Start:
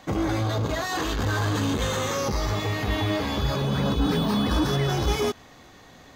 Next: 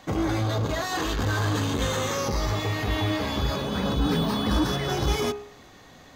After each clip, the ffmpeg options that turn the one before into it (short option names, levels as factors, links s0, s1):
-af "bandreject=f=68.72:t=h:w=4,bandreject=f=137.44:t=h:w=4,bandreject=f=206.16:t=h:w=4,bandreject=f=274.88:t=h:w=4,bandreject=f=343.6:t=h:w=4,bandreject=f=412.32:t=h:w=4,bandreject=f=481.04:t=h:w=4,bandreject=f=549.76:t=h:w=4,bandreject=f=618.48:t=h:w=4,bandreject=f=687.2:t=h:w=4,bandreject=f=755.92:t=h:w=4,bandreject=f=824.64:t=h:w=4,bandreject=f=893.36:t=h:w=4,bandreject=f=962.08:t=h:w=4,bandreject=f=1030.8:t=h:w=4,bandreject=f=1099.52:t=h:w=4,bandreject=f=1168.24:t=h:w=4,bandreject=f=1236.96:t=h:w=4,bandreject=f=1305.68:t=h:w=4,bandreject=f=1374.4:t=h:w=4,bandreject=f=1443.12:t=h:w=4,bandreject=f=1511.84:t=h:w=4,bandreject=f=1580.56:t=h:w=4,bandreject=f=1649.28:t=h:w=4,bandreject=f=1718:t=h:w=4,bandreject=f=1786.72:t=h:w=4,bandreject=f=1855.44:t=h:w=4,bandreject=f=1924.16:t=h:w=4,bandreject=f=1992.88:t=h:w=4,bandreject=f=2061.6:t=h:w=4,bandreject=f=2130.32:t=h:w=4,bandreject=f=2199.04:t=h:w=4,bandreject=f=2267.76:t=h:w=4,bandreject=f=2336.48:t=h:w=4,bandreject=f=2405.2:t=h:w=4,bandreject=f=2473.92:t=h:w=4,bandreject=f=2542.64:t=h:w=4,bandreject=f=2611.36:t=h:w=4,bandreject=f=2680.08:t=h:w=4"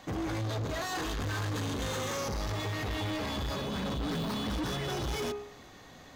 -af "asoftclip=type=tanh:threshold=0.0376,volume=0.794"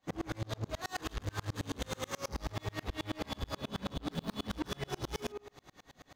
-af "aeval=exprs='val(0)*pow(10,-35*if(lt(mod(-9.3*n/s,1),2*abs(-9.3)/1000),1-mod(-9.3*n/s,1)/(2*abs(-9.3)/1000),(mod(-9.3*n/s,1)-2*abs(-9.3)/1000)/(1-2*abs(-9.3)/1000))/20)':c=same,volume=1.41"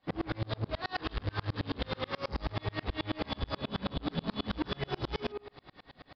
-af "aresample=11025,aresample=44100,volume=1.5"